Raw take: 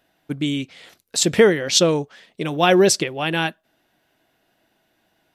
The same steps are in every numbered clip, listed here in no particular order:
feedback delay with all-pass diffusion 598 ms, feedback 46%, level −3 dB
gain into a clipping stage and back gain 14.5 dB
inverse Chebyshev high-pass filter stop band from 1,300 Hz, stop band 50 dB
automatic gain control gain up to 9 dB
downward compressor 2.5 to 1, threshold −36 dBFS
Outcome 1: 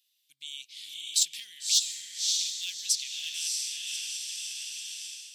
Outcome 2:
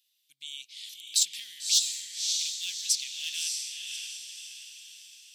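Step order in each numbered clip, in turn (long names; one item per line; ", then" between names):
feedback delay with all-pass diffusion, then downward compressor, then automatic gain control, then gain into a clipping stage and back, then inverse Chebyshev high-pass filter
downward compressor, then automatic gain control, then feedback delay with all-pass diffusion, then gain into a clipping stage and back, then inverse Chebyshev high-pass filter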